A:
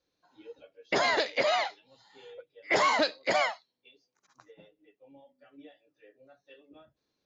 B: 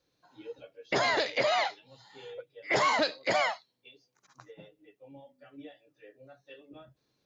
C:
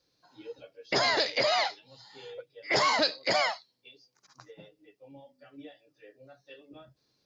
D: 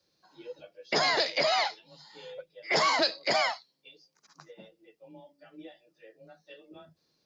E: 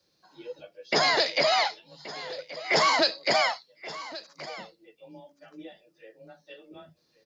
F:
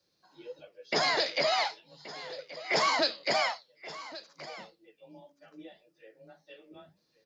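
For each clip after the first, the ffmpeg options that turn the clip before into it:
ffmpeg -i in.wav -af "equalizer=frequency=130:width_type=o:width=0.41:gain=9.5,alimiter=limit=-22.5dB:level=0:latency=1:release=89,volume=4dB" out.wav
ffmpeg -i in.wav -af "equalizer=frequency=4900:width_type=o:width=0.47:gain=10" out.wav
ffmpeg -i in.wav -af "afreqshift=27" out.wav
ffmpeg -i in.wav -af "aecho=1:1:1127:0.15,volume=3dB" out.wav
ffmpeg -i in.wav -af "flanger=delay=6.5:depth=6.2:regen=-80:speed=1.7:shape=sinusoidal" out.wav

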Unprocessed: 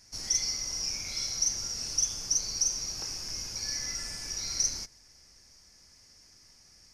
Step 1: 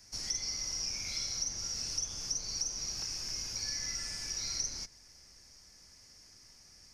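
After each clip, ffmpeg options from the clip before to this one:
ffmpeg -i in.wav -filter_complex "[0:a]acrossover=split=210|1500|7800[link_01][link_02][link_03][link_04];[link_01]acompressor=threshold=-46dB:ratio=4[link_05];[link_02]acompressor=threshold=-56dB:ratio=4[link_06];[link_03]acompressor=threshold=-34dB:ratio=4[link_07];[link_04]acompressor=threshold=-55dB:ratio=4[link_08];[link_05][link_06][link_07][link_08]amix=inputs=4:normalize=0" out.wav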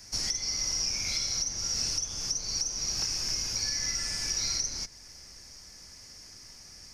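ffmpeg -i in.wav -af "alimiter=level_in=4dB:limit=-24dB:level=0:latency=1:release=462,volume=-4dB,volume=8.5dB" out.wav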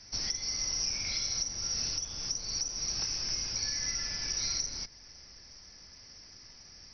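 ffmpeg -i in.wav -af "volume=-2.5dB" -ar 48000 -c:a mp2 -b:a 48k out.mp2

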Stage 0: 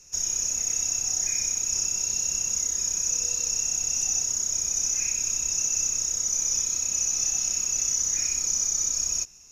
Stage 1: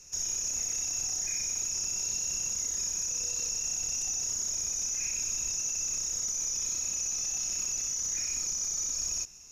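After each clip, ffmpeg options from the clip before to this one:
ffmpeg -i in.wav -af "alimiter=level_in=0.5dB:limit=-24dB:level=0:latency=1:release=21,volume=-0.5dB" out.wav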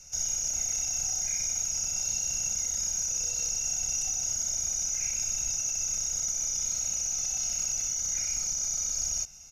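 ffmpeg -i in.wav -af "aecho=1:1:1.4:0.76" out.wav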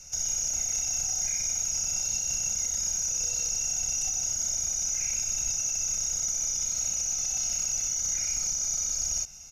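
ffmpeg -i in.wav -af "alimiter=limit=-23.5dB:level=0:latency=1:release=67,volume=3dB" out.wav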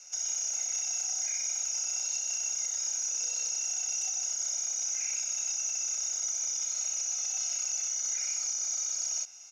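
ffmpeg -i in.wav -af "highpass=650,lowpass=7500,volume=-1.5dB" out.wav

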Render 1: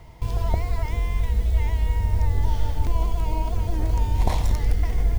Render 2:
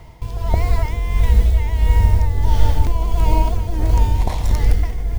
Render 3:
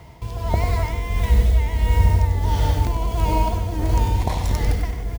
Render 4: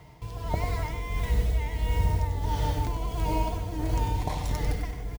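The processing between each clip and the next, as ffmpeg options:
ffmpeg -i in.wav -af "dynaudnorm=framelen=160:gausssize=7:maxgain=5dB,tremolo=f=1.5:d=0.56,volume=5dB" out.wav
ffmpeg -i in.wav -af "highpass=60,aecho=1:1:97:0.376" out.wav
ffmpeg -i in.wav -af "aecho=1:1:6.7:0.38,volume=-7dB" out.wav

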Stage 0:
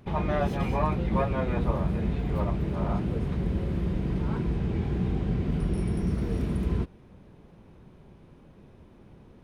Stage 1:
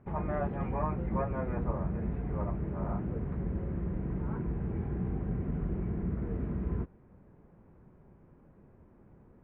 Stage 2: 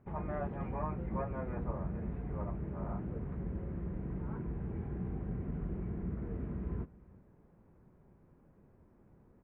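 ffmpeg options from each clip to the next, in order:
ffmpeg -i in.wav -af "lowpass=frequency=1900:width=0.5412,lowpass=frequency=1900:width=1.3066,volume=-6dB" out.wav
ffmpeg -i in.wav -af "aecho=1:1:359:0.0841,volume=-5dB" out.wav

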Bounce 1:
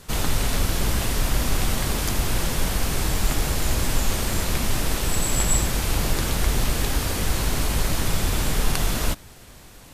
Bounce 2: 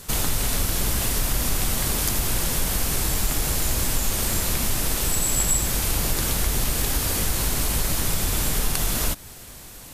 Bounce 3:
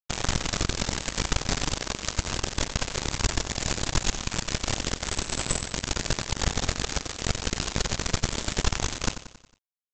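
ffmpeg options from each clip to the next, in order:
ffmpeg -i in.wav -af "highshelf=frequency=6600:gain=10.5,acompressor=threshold=-23dB:ratio=2,volume=1.5dB" out.wav
ffmpeg -i in.wav -af "aresample=16000,acrusher=bits=2:mix=0:aa=0.5,aresample=44100,aecho=1:1:91|182|273|364|455:0.251|0.128|0.0653|0.0333|0.017" out.wav

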